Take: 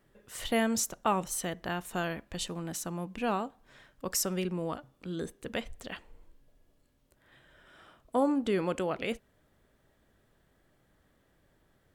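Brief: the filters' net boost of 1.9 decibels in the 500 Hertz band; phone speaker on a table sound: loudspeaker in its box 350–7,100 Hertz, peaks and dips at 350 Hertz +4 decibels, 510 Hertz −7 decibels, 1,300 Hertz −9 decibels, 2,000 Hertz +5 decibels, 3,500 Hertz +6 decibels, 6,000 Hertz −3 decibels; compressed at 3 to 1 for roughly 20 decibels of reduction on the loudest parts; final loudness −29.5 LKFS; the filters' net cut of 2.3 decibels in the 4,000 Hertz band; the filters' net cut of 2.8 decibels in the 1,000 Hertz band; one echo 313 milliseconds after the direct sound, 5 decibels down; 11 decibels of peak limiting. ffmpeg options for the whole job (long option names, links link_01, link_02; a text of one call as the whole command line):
ffmpeg -i in.wav -af "equalizer=frequency=500:width_type=o:gain=7.5,equalizer=frequency=1000:width_type=o:gain=-4.5,equalizer=frequency=4000:width_type=o:gain=-6.5,acompressor=threshold=-47dB:ratio=3,alimiter=level_in=15.5dB:limit=-24dB:level=0:latency=1,volume=-15.5dB,highpass=frequency=350:width=0.5412,highpass=frequency=350:width=1.3066,equalizer=frequency=350:width_type=q:width=4:gain=4,equalizer=frequency=510:width_type=q:width=4:gain=-7,equalizer=frequency=1300:width_type=q:width=4:gain=-9,equalizer=frequency=2000:width_type=q:width=4:gain=5,equalizer=frequency=3500:width_type=q:width=4:gain=6,equalizer=frequency=6000:width_type=q:width=4:gain=-3,lowpass=frequency=7100:width=0.5412,lowpass=frequency=7100:width=1.3066,aecho=1:1:313:0.562,volume=23.5dB" out.wav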